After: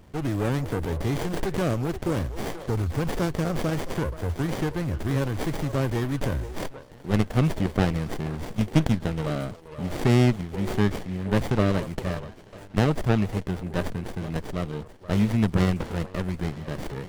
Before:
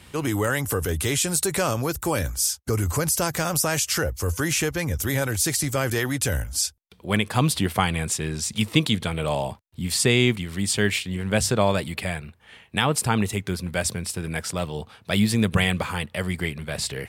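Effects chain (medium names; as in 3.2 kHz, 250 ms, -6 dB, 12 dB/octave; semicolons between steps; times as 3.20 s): repeats whose band climbs or falls 478 ms, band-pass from 480 Hz, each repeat 1.4 oct, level -8.5 dB; sliding maximum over 33 samples; trim -2 dB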